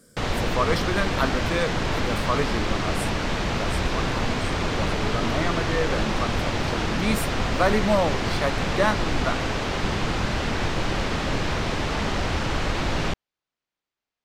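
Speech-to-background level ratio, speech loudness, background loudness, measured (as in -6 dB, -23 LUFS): -2.5 dB, -28.5 LUFS, -26.0 LUFS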